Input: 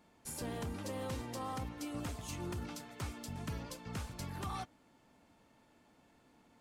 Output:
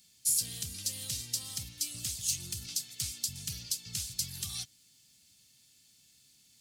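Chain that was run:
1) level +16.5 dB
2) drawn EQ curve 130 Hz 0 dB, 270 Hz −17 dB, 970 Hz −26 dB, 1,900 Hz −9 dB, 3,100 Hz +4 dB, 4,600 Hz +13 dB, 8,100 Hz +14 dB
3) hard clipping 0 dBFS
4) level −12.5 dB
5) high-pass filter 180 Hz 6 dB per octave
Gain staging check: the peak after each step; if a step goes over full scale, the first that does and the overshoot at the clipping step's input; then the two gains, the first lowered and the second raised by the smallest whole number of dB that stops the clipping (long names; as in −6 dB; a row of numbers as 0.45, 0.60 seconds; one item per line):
−13.5, −2.0, −2.0, −14.5, −14.5 dBFS
no step passes full scale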